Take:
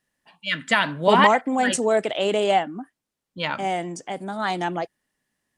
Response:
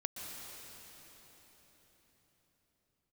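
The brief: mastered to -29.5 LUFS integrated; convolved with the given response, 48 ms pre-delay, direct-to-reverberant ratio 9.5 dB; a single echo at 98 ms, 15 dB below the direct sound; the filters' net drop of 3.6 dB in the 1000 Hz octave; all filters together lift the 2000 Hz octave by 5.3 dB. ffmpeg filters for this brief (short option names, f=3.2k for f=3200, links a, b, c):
-filter_complex "[0:a]equalizer=f=1k:t=o:g=-6.5,equalizer=f=2k:t=o:g=8,aecho=1:1:98:0.178,asplit=2[a][b];[1:a]atrim=start_sample=2205,adelay=48[c];[b][c]afir=irnorm=-1:irlink=0,volume=-10dB[d];[a][d]amix=inputs=2:normalize=0,volume=-8.5dB"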